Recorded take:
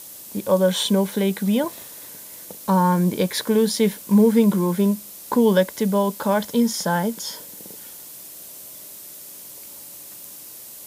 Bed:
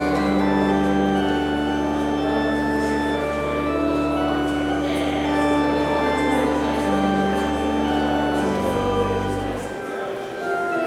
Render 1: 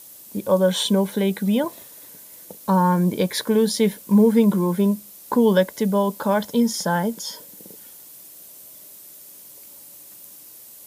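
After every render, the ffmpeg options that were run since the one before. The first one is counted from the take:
-af "afftdn=nr=6:nf=-40"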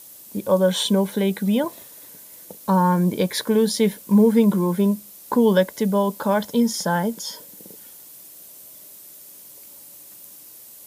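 -af anull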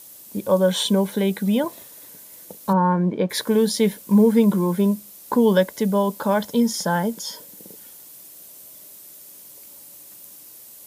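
-filter_complex "[0:a]asplit=3[a][b][c];[a]afade=t=out:st=2.72:d=0.02[d];[b]highpass=140,lowpass=2k,afade=t=in:st=2.72:d=0.02,afade=t=out:st=3.29:d=0.02[e];[c]afade=t=in:st=3.29:d=0.02[f];[d][e][f]amix=inputs=3:normalize=0"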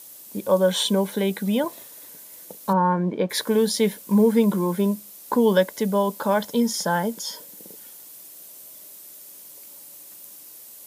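-af "lowshelf=f=150:g=-9"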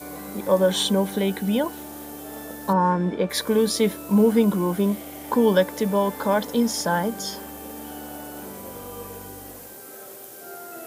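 -filter_complex "[1:a]volume=-17dB[a];[0:a][a]amix=inputs=2:normalize=0"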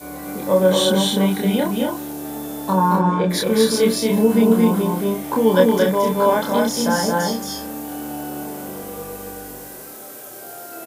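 -filter_complex "[0:a]asplit=2[a][b];[b]adelay=27,volume=-2dB[c];[a][c]amix=inputs=2:normalize=0,aecho=1:1:224.5|259.5:0.708|0.562"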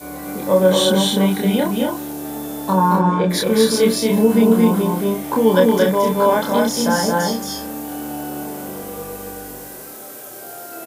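-af "volume=1.5dB,alimiter=limit=-3dB:level=0:latency=1"

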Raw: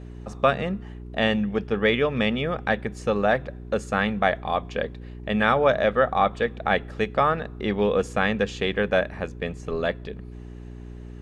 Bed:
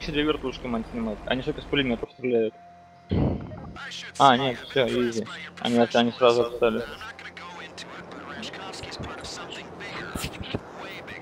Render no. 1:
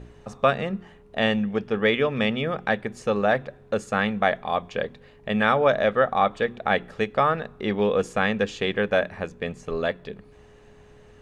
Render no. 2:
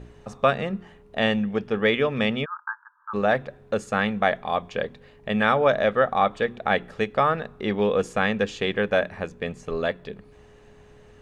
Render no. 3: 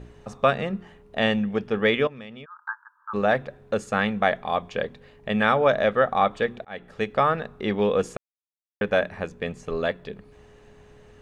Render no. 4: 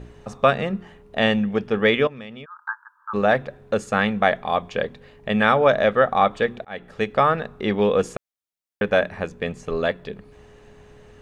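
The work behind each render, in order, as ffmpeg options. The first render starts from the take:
-af "bandreject=f=60:t=h:w=4,bandreject=f=120:t=h:w=4,bandreject=f=180:t=h:w=4,bandreject=f=240:t=h:w=4,bandreject=f=300:t=h:w=4,bandreject=f=360:t=h:w=4"
-filter_complex "[0:a]asplit=3[a][b][c];[a]afade=t=out:st=2.44:d=0.02[d];[b]asuperpass=centerf=1200:order=20:qfactor=1.6,afade=t=in:st=2.44:d=0.02,afade=t=out:st=3.13:d=0.02[e];[c]afade=t=in:st=3.13:d=0.02[f];[d][e][f]amix=inputs=3:normalize=0"
-filter_complex "[0:a]asettb=1/sr,asplit=3[a][b][c];[a]atrim=end=2.074[d];[b]atrim=start=2.07:end=2.68,asetpts=PTS-STARTPTS,afade=t=in:d=0.004:c=qsin,afade=t=out:st=0.606:d=0.004:c=qsin,acompressor=threshold=-43dB:ratio=3:attack=3.2:release=140:knee=1:detection=peak[e];[c]atrim=start=2.676[f];[d][e]acrossfade=d=0.004:c1=hsin:c2=qsin[g];[g][f]acrossfade=d=0.004:c1=qsin:c2=hsin,asplit=4[h][i][j][k];[h]atrim=end=6.65,asetpts=PTS-STARTPTS,afade=t=out:st=6.646:d=0.004:c=hsin[l];[i]atrim=start=6.65:end=8.17,asetpts=PTS-STARTPTS,afade=t=in:d=0.45,afade=t=out:st=1.516:d=0.004:c=hsin[m];[j]atrim=start=8.17:end=8.81,asetpts=PTS-STARTPTS,volume=0[n];[k]atrim=start=8.81,asetpts=PTS-STARTPTS,afade=t=in:d=0.004:c=hsin[o];[l][m][n][o]concat=n=4:v=0:a=1"
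-af "volume=3dB"

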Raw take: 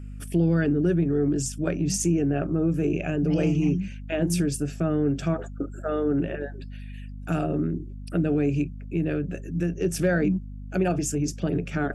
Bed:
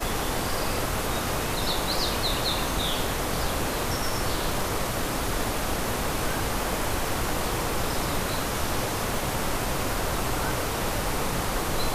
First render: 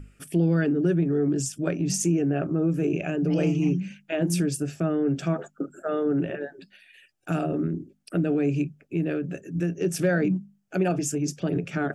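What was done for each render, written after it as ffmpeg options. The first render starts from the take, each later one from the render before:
-af "bandreject=f=50:t=h:w=6,bandreject=f=100:t=h:w=6,bandreject=f=150:t=h:w=6,bandreject=f=200:t=h:w=6,bandreject=f=250:t=h:w=6"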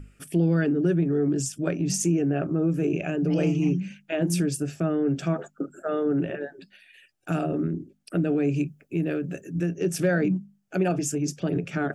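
-filter_complex "[0:a]asettb=1/sr,asplit=3[a][b][c];[a]atrim=end=8.544[d];[b]atrim=start=8.54:end=9.52,asetpts=PTS-STARTPTS,afade=t=in:d=0.004:c=qsin,afade=t=out:st=0.976:d=0.004:c=qsin,highshelf=f=8.9k:g=9.5[e];[c]atrim=start=9.516[f];[d][e]acrossfade=d=0.004:c1=hsin:c2=qsin[g];[g][f]acrossfade=d=0.004:c1=qsin:c2=hsin"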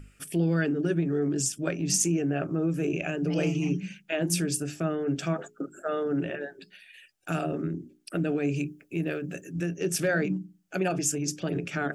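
-af "tiltshelf=f=1.2k:g=-3.5,bandreject=f=60:t=h:w=6,bandreject=f=120:t=h:w=6,bandreject=f=180:t=h:w=6,bandreject=f=240:t=h:w=6,bandreject=f=300:t=h:w=6,bandreject=f=360:t=h:w=6,bandreject=f=420:t=h:w=6"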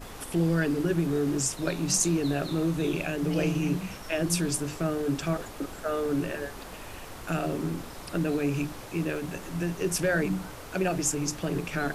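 -filter_complex "[1:a]volume=-15dB[a];[0:a][a]amix=inputs=2:normalize=0"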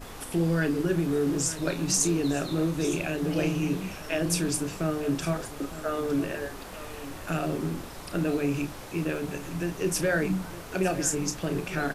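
-filter_complex "[0:a]asplit=2[a][b];[b]adelay=32,volume=-10.5dB[c];[a][c]amix=inputs=2:normalize=0,aecho=1:1:909:0.188"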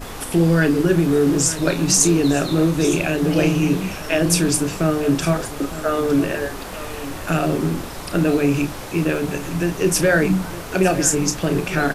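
-af "volume=9.5dB,alimiter=limit=-2dB:level=0:latency=1"

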